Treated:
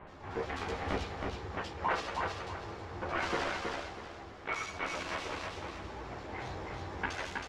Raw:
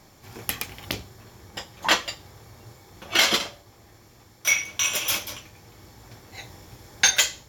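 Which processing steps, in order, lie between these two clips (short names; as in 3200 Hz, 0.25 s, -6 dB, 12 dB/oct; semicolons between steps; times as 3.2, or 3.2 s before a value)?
switching dead time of 0.17 ms; low shelf 340 Hz -11 dB; in parallel at 0 dB: negative-ratio compressor -38 dBFS; on the sum: bands offset in time lows, highs 70 ms, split 2700 Hz; chorus voices 6, 0.37 Hz, delay 13 ms, depth 2.3 ms; limiter -22 dBFS, peak gain reduction 7.5 dB; tape spacing loss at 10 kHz 32 dB; on a send: feedback echo 0.32 s, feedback 31%, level -3.5 dB; on the sum: gain +6.5 dB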